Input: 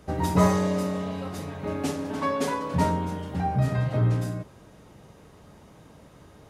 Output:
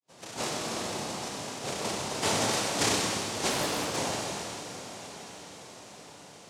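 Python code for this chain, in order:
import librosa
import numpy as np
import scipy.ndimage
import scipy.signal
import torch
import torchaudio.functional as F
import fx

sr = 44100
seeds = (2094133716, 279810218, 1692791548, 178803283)

y = fx.fade_in_head(x, sr, length_s=1.26)
y = fx.sample_hold(y, sr, seeds[0], rate_hz=1900.0, jitter_pct=0)
y = fx.bandpass_q(y, sr, hz=1400.0, q=0.58)
y = fx.noise_vocoder(y, sr, seeds[1], bands=2)
y = fx.echo_diffused(y, sr, ms=913, feedback_pct=51, wet_db=-13.0)
y = fx.rev_schroeder(y, sr, rt60_s=2.0, comb_ms=27, drr_db=0.0)
y = fx.doppler_dist(y, sr, depth_ms=0.63, at=(3.5, 3.97))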